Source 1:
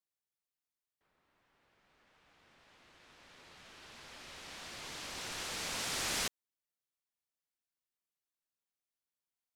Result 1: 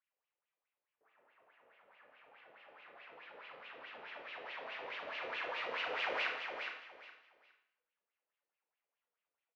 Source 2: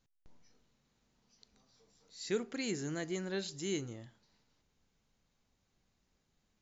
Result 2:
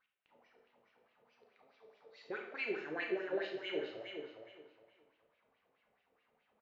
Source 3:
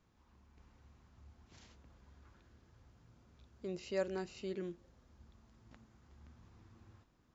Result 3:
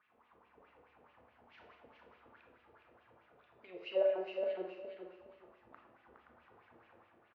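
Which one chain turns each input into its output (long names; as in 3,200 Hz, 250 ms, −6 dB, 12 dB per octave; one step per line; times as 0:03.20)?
dynamic equaliser 190 Hz, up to −8 dB, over −56 dBFS, Q 1.3
in parallel at −2 dB: downward compressor, threshold −54 dBFS
on the sum: LFO wah 4.7 Hz 460–2,800 Hz, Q 5.2
high-frequency loss of the air 260 metres
on a send: repeating echo 414 ms, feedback 23%, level −6 dB
on the sum: four-comb reverb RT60 0.66 s, combs from 26 ms, DRR 3 dB
level +11 dB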